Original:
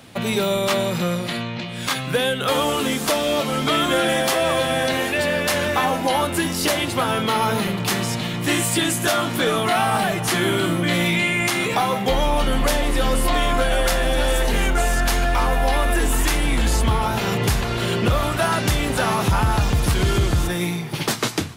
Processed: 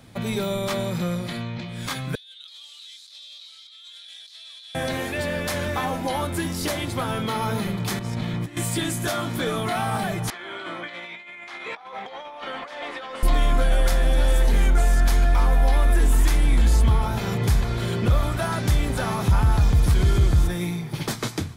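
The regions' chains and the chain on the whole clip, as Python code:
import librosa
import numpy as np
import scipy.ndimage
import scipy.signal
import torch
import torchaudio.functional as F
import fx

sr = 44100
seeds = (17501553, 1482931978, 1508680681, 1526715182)

y = fx.chain(x, sr, fx.ladder_bandpass(hz=4200.0, resonance_pct=75),
    fx.over_compress(threshold_db=-37.0, ratio=-1.0), at=(2.15, 4.75))
y = fx.chain(y, sr, fx.high_shelf(hz=4600.0, db=-10.0),
    fx.over_compress(threshold_db=-26.0, ratio=-0.5), at=(7.99, 8.57))
y = fx.chain(y, sr, fx.bandpass_edges(low_hz=680.0, high_hz=3200.0),
    fx.over_compress(threshold_db=-28.0, ratio=-0.5), at=(10.3, 13.23))
y = fx.low_shelf(y, sr, hz=140.0, db=12.0)
y = fx.notch(y, sr, hz=2800.0, q=11.0)
y = F.gain(torch.from_numpy(y), -7.0).numpy()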